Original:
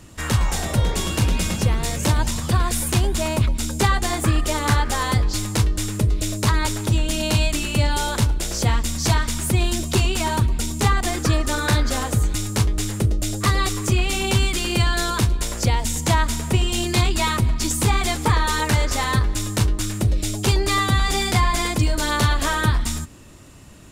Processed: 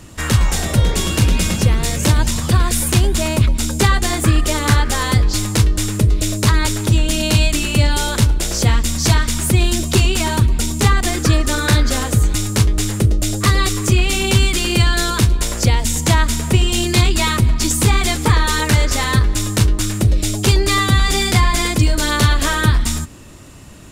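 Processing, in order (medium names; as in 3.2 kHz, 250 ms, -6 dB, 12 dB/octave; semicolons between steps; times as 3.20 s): dynamic bell 850 Hz, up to -5 dB, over -35 dBFS, Q 1.3; trim +5.5 dB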